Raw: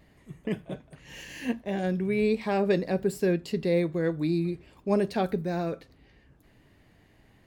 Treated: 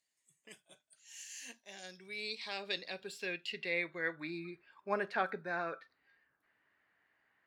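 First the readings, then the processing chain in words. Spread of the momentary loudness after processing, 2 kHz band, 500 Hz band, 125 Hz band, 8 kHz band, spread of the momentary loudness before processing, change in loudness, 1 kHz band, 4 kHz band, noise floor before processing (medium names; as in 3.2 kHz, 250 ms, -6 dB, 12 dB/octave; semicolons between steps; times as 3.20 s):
15 LU, 0.0 dB, -15.0 dB, -23.5 dB, -2.0 dB, 14 LU, -11.0 dB, -6.0 dB, +0.5 dB, -61 dBFS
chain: spectral noise reduction 10 dB; band-pass sweep 7.6 kHz -> 1.5 kHz, 1.25–4.61 s; trim +6 dB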